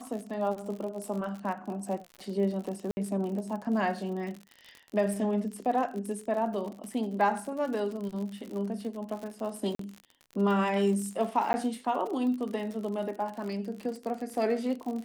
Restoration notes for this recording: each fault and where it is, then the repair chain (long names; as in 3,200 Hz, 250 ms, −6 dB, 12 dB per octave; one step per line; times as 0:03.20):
surface crackle 59 per second −36 dBFS
0:02.91–0:02.97: drop-out 60 ms
0:09.75–0:09.79: drop-out 43 ms
0:11.53–0:11.54: drop-out 10 ms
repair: click removal
repair the gap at 0:02.91, 60 ms
repair the gap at 0:09.75, 43 ms
repair the gap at 0:11.53, 10 ms